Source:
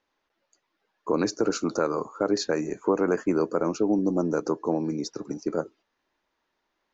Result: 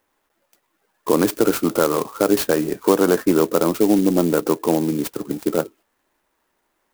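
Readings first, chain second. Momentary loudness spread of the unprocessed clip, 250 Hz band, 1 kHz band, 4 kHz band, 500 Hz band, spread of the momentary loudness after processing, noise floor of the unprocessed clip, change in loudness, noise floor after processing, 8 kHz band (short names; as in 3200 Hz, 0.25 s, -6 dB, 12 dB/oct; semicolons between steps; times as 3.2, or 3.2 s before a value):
8 LU, +7.5 dB, +7.0 dB, +6.5 dB, +7.5 dB, 8 LU, -79 dBFS, +7.5 dB, -71 dBFS, n/a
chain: clock jitter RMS 0.057 ms; gain +7.5 dB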